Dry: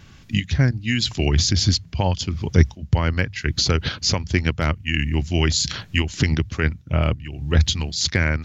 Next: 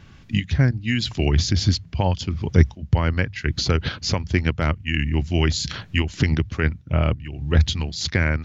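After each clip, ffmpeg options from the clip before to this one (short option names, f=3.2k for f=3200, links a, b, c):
-af "highshelf=f=5.3k:g=-11"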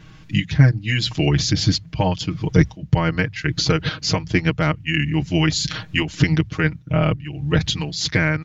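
-af "aecho=1:1:6.4:0.88,volume=1dB"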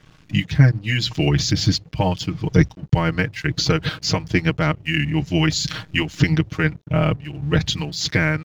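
-af "aeval=exprs='sgn(val(0))*max(abs(val(0))-0.00501,0)':c=same"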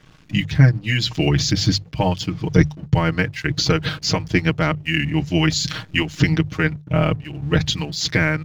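-af "bandreject=f=50:t=h:w=6,bandreject=f=100:t=h:w=6,bandreject=f=150:t=h:w=6,volume=1dB"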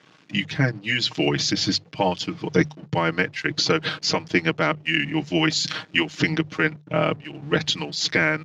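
-af "highpass=250,lowpass=6.5k"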